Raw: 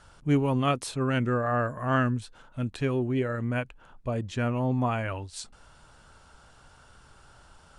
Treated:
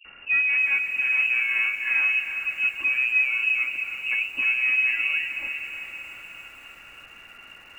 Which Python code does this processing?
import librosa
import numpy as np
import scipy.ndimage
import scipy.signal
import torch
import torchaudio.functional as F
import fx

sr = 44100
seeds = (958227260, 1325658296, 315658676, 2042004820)

p1 = fx.cvsd(x, sr, bps=64000)
p2 = fx.highpass(p1, sr, hz=69.0, slope=6)
p3 = fx.env_lowpass_down(p2, sr, base_hz=650.0, full_db=-27.0)
p4 = fx.low_shelf(p3, sr, hz=140.0, db=7.5)
p5 = p4 + 0.98 * np.pad(p4, (int(3.6 * sr / 1000.0), 0))[:len(p4)]
p6 = 10.0 ** (-25.0 / 20.0) * np.tanh(p5 / 10.0 ** (-25.0 / 20.0))
p7 = p5 + F.gain(torch.from_numpy(p6), -11.5).numpy()
p8 = fx.quant_dither(p7, sr, seeds[0], bits=8, dither='triangular')
p9 = fx.dispersion(p8, sr, late='highs', ms=53.0, hz=390.0)
p10 = np.clip(10.0 ** (19.0 / 20.0) * p9, -1.0, 1.0) / 10.0 ** (19.0 / 20.0)
p11 = fx.freq_invert(p10, sr, carrier_hz=2800)
p12 = p11 + fx.echo_diffused(p11, sr, ms=467, feedback_pct=46, wet_db=-10.5, dry=0)
y = fx.echo_crushed(p12, sr, ms=311, feedback_pct=55, bits=8, wet_db=-10)